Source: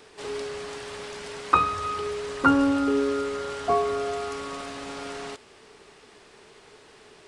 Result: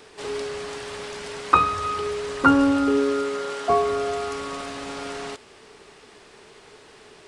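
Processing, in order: 2.97–3.68 HPF 91 Hz -> 260 Hz 12 dB/oct; gain +3 dB

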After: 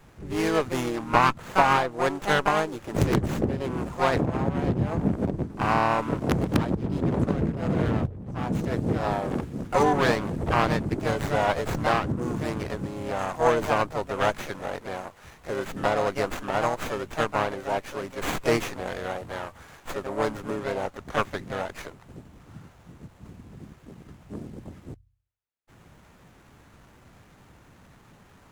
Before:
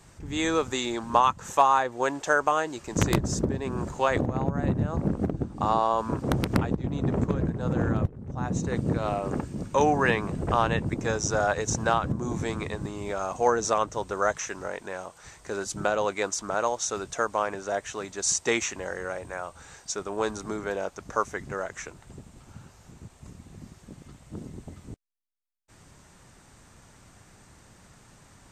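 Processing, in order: de-hum 45.58 Hz, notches 2; harmoniser +5 st -4 dB; running maximum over 9 samples

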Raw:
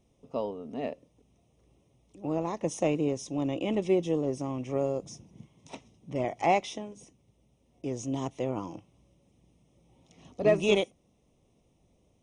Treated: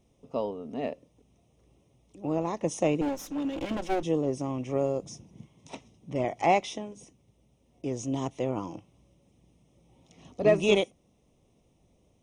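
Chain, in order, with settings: 3.01–4.03 minimum comb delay 3.6 ms; gain +1.5 dB

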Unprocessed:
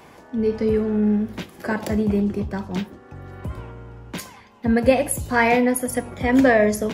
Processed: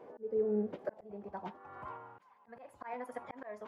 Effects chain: band-pass sweep 480 Hz -> 1000 Hz, 1.11–3.21; time stretch by phase-locked vocoder 0.53×; auto swell 0.727 s; gain +2.5 dB

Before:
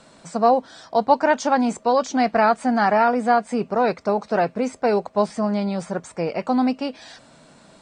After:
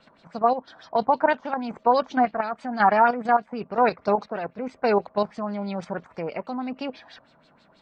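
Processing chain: tremolo 1 Hz, depth 46%; level quantiser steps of 10 dB; LFO low-pass sine 6.2 Hz 970–4500 Hz

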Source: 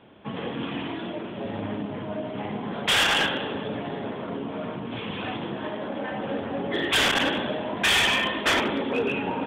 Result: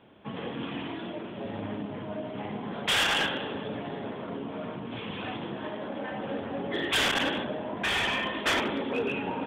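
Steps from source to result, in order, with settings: 7.43–8.33 high shelf 2500 Hz -> 4700 Hz -10.5 dB; gain -4 dB

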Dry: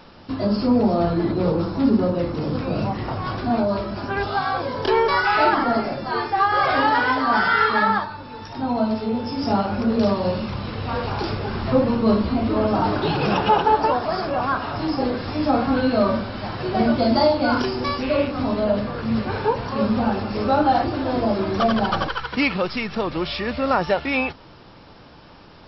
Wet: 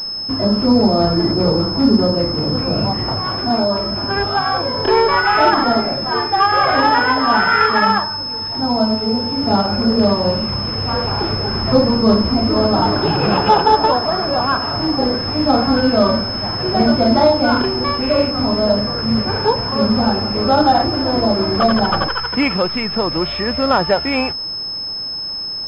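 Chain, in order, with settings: 3.19–3.83 low shelf 160 Hz -7 dB; pulse-width modulation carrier 5200 Hz; gain +5 dB

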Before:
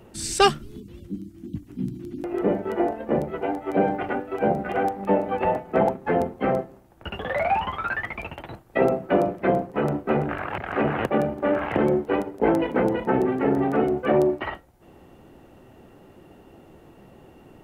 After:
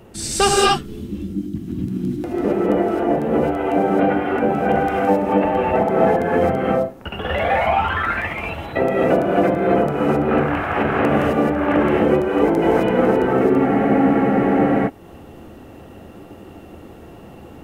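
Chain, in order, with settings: in parallel at -1 dB: compressor, threshold -28 dBFS, peak gain reduction 15.5 dB; on the sum: non-linear reverb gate 0.29 s rising, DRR -4 dB; spectral freeze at 13.68, 1.20 s; gain -1.5 dB

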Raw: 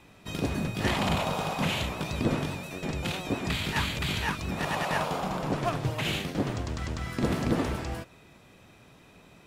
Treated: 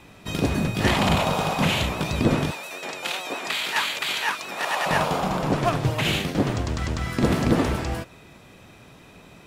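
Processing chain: 2.51–4.86 HPF 610 Hz 12 dB/oct; gain +6.5 dB

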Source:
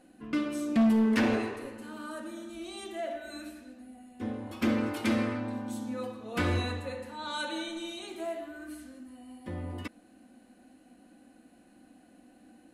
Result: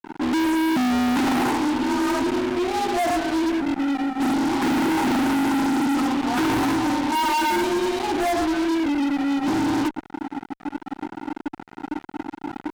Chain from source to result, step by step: double band-pass 480 Hz, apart 1.6 oct; frequency shift +26 Hz; fuzz box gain 60 dB, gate -60 dBFS; gain -6.5 dB

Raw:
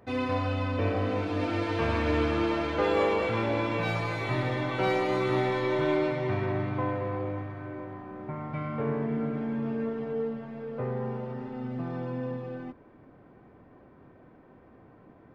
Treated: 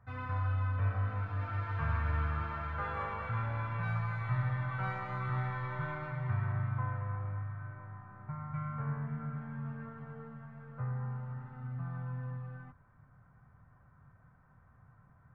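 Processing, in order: EQ curve 140 Hz 0 dB, 330 Hz -28 dB, 1400 Hz -1 dB, 2600 Hz -17 dB, 5500 Hz -24 dB

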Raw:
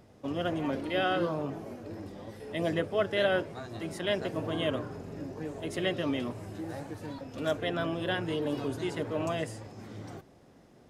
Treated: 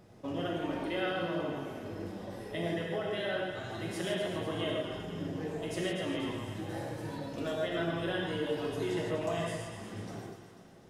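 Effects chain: reverb removal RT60 0.81 s; compressor, threshold -33 dBFS, peak gain reduction 10.5 dB; split-band echo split 900 Hz, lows 0.136 s, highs 0.246 s, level -8 dB; non-linear reverb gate 0.19 s flat, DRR -3 dB; gain -2 dB

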